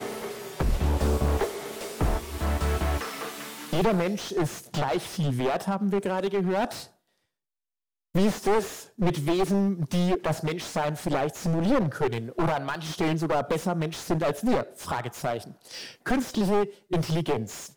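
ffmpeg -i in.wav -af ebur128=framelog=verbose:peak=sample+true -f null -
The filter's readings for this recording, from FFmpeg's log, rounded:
Integrated loudness:
  I:         -27.7 LUFS
  Threshold: -37.9 LUFS
Loudness range:
  LRA:         2.4 LU
  Threshold: -48.0 LUFS
  LRA low:   -29.0 LUFS
  LRA high:  -26.6 LUFS
Sample peak:
  Peak:      -11.1 dBFS
True peak:
  Peak:      -11.1 dBFS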